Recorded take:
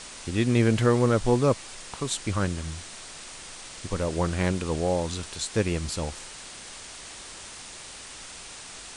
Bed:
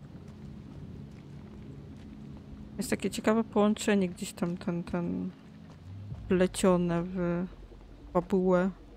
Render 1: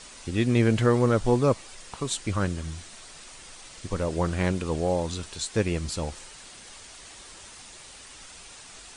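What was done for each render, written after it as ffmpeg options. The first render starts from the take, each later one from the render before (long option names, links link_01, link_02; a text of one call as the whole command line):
ffmpeg -i in.wav -af "afftdn=noise_reduction=6:noise_floor=-43" out.wav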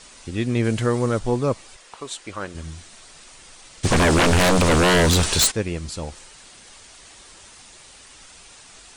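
ffmpeg -i in.wav -filter_complex "[0:a]asettb=1/sr,asplit=3[link_01][link_02][link_03];[link_01]atrim=end=0.644[link_04];[link_02]atrim=start=0.64:end=1.19,asetpts=PTS-STARTPTS,afade=type=in:duration=0.004:curve=qsin,afade=type=out:start_time=0.546:duration=0.004:curve=qsin,highshelf=frequency=6900:gain=9.5[link_05];[link_03]atrim=start=1.186[link_06];[link_04][link_05]acrossfade=duration=0.004:curve1=hsin:curve2=qsin[link_07];[link_07][link_06]acrossfade=duration=0.004:curve1=qsin:curve2=hsin,asettb=1/sr,asplit=3[link_08][link_09][link_10];[link_08]atrim=end=1.764[link_11];[link_09]atrim=start=1.76:end=2.55,asetpts=PTS-STARTPTS,afade=type=in:duration=0.004:curve=qsin,afade=type=out:start_time=0.786:duration=0.004:curve=qsin,bass=frequency=250:gain=-15,treble=frequency=4000:gain=-4[link_12];[link_10]atrim=start=2.546[link_13];[link_11][link_12]acrossfade=duration=0.004:curve1=hsin:curve2=qsin[link_14];[link_14][link_13]acrossfade=duration=0.004:curve1=qsin:curve2=hsin,asplit=3[link_15][link_16][link_17];[link_15]afade=type=out:start_time=3.83:duration=0.02[link_18];[link_16]aeval=exprs='0.237*sin(PI/2*6.31*val(0)/0.237)':channel_layout=same,afade=type=in:start_time=3.83:duration=0.02,afade=type=out:start_time=5.5:duration=0.02[link_19];[link_17]afade=type=in:start_time=5.5:duration=0.02[link_20];[link_18][link_19][link_20]amix=inputs=3:normalize=0" out.wav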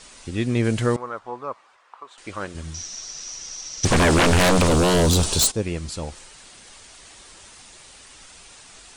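ffmpeg -i in.wav -filter_complex "[0:a]asettb=1/sr,asplit=3[link_01][link_02][link_03];[link_01]atrim=end=0.964[link_04];[link_02]atrim=start=0.96:end=2.18,asetpts=PTS-STARTPTS,afade=type=in:duration=0.004:curve=qsin,afade=type=out:start_time=1.216:duration=0.004:curve=qsin,bandpass=frequency=1100:width_type=q:width=2[link_05];[link_03]atrim=start=2.176[link_06];[link_04][link_05]acrossfade=duration=0.004:curve1=hsin:curve2=qsin[link_07];[link_07][link_06]acrossfade=duration=0.004:curve1=qsin:curve2=hsin,asettb=1/sr,asplit=3[link_08][link_09][link_10];[link_08]atrim=end=2.744[link_11];[link_09]atrim=start=2.74:end=3.85,asetpts=PTS-STARTPTS,afade=type=in:duration=0.004:curve=qsin,afade=type=out:start_time=1.106:duration=0.004:curve=qsin,lowpass=frequency=5800:width_type=q:width=14[link_12];[link_10]atrim=start=3.846[link_13];[link_11][link_12]acrossfade=duration=0.004:curve1=hsin:curve2=qsin[link_14];[link_14][link_13]acrossfade=duration=0.004:curve1=qsin:curve2=hsin,asettb=1/sr,asplit=3[link_15][link_16][link_17];[link_15]atrim=end=4.674[link_18];[link_16]atrim=start=4.67:end=5.63,asetpts=PTS-STARTPTS,afade=type=in:duration=0.004:curve=qsin,afade=type=out:start_time=0.956:duration=0.004:curve=qsin,equalizer=frequency=1900:width_type=o:width=1.1:gain=-11[link_19];[link_17]atrim=start=5.626[link_20];[link_18][link_19]acrossfade=duration=0.004:curve1=hsin:curve2=qsin[link_21];[link_21][link_20]acrossfade=duration=0.004:curve1=qsin:curve2=hsin" out.wav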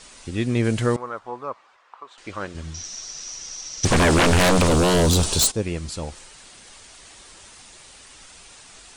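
ffmpeg -i in.wav -filter_complex "[0:a]asettb=1/sr,asplit=3[link_01][link_02][link_03];[link_01]atrim=end=1.504[link_04];[link_02]atrim=start=1.5:end=2.84,asetpts=PTS-STARTPTS,afade=type=in:duration=0.004:curve=qsin,afade=type=out:start_time=1.336:duration=0.004:curve=qsin,lowpass=7000[link_05];[link_03]atrim=start=2.836[link_06];[link_04][link_05]acrossfade=duration=0.004:curve1=hsin:curve2=qsin[link_07];[link_07][link_06]acrossfade=duration=0.004:curve1=qsin:curve2=hsin" out.wav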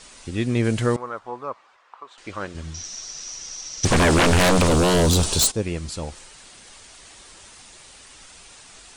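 ffmpeg -i in.wav -af anull out.wav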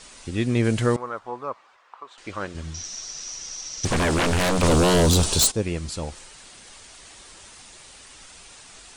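ffmpeg -i in.wav -filter_complex "[0:a]asplit=3[link_01][link_02][link_03];[link_01]atrim=end=3.832[link_04];[link_02]atrim=start=3.828:end=4.632,asetpts=PTS-STARTPTS,volume=-5dB[link_05];[link_03]atrim=start=4.628[link_06];[link_04][link_05]acrossfade=duration=0.004:curve1=hsin:curve2=hsin[link_07];[link_07][link_06]acrossfade=duration=0.004:curve1=hsin:curve2=hsin" out.wav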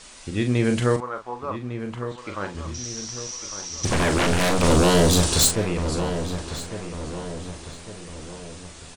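ffmpeg -i in.wav -filter_complex "[0:a]asplit=2[link_01][link_02];[link_02]adelay=40,volume=-7.5dB[link_03];[link_01][link_03]amix=inputs=2:normalize=0,asplit=2[link_04][link_05];[link_05]adelay=1153,lowpass=frequency=2600:poles=1,volume=-10dB,asplit=2[link_06][link_07];[link_07]adelay=1153,lowpass=frequency=2600:poles=1,volume=0.49,asplit=2[link_08][link_09];[link_09]adelay=1153,lowpass=frequency=2600:poles=1,volume=0.49,asplit=2[link_10][link_11];[link_11]adelay=1153,lowpass=frequency=2600:poles=1,volume=0.49,asplit=2[link_12][link_13];[link_13]adelay=1153,lowpass=frequency=2600:poles=1,volume=0.49[link_14];[link_04][link_06][link_08][link_10][link_12][link_14]amix=inputs=6:normalize=0" out.wav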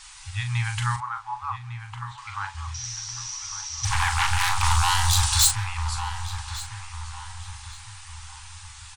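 ffmpeg -i in.wav -af "afftfilt=real='re*(1-between(b*sr/4096,120,770))':imag='im*(1-between(b*sr/4096,120,770))':win_size=4096:overlap=0.75,adynamicequalizer=threshold=0.00631:dfrequency=550:dqfactor=0.91:tfrequency=550:tqfactor=0.91:attack=5:release=100:ratio=0.375:range=3:mode=boostabove:tftype=bell" out.wav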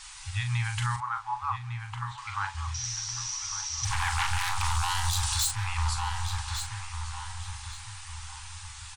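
ffmpeg -i in.wav -af "alimiter=limit=-18.5dB:level=0:latency=1:release=259" out.wav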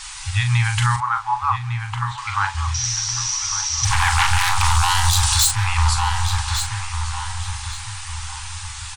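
ffmpeg -i in.wav -af "volume=11dB" out.wav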